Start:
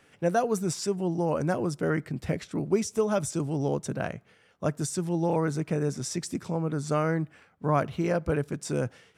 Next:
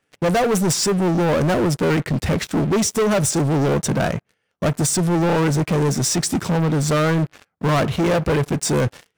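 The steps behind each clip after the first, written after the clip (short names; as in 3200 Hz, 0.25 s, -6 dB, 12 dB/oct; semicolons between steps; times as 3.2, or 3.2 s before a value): sample leveller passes 5; gain -1.5 dB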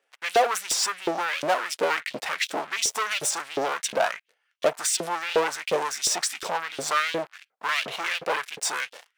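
LFO high-pass saw up 2.8 Hz 430–3600 Hz; bell 3000 Hz +3.5 dB 1.7 oct; gain -5 dB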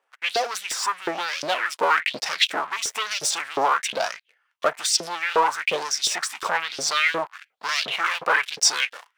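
vocal rider within 3 dB 0.5 s; LFO bell 1.1 Hz 960–5500 Hz +15 dB; gain -2.5 dB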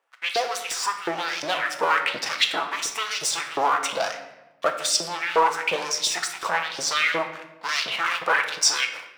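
shoebox room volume 440 m³, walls mixed, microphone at 0.69 m; gain -1.5 dB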